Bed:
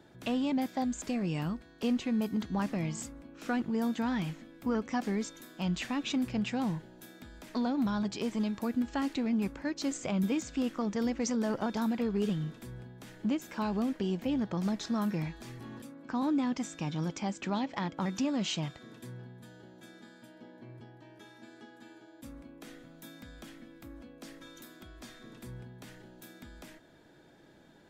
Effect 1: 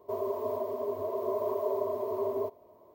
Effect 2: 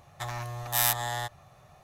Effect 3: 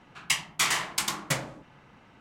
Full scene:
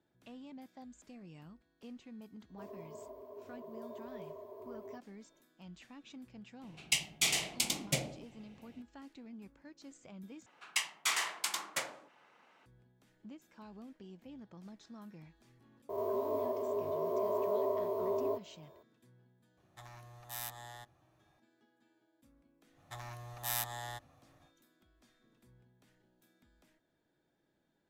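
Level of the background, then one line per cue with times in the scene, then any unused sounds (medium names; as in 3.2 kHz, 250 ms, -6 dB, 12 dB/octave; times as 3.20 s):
bed -20 dB
2.49 s: add 1 -17 dB
6.62 s: add 3 -3.5 dB + high-order bell 1.3 kHz -15.5 dB 1.2 oct
10.46 s: replace with 3 -7 dB + high-pass 450 Hz
15.89 s: add 1 -4.5 dB + reverse spectral sustain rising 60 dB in 0.90 s
19.57 s: add 2 -17.5 dB + hard clipper -10.5 dBFS
22.71 s: add 2 -11 dB, fades 0.10 s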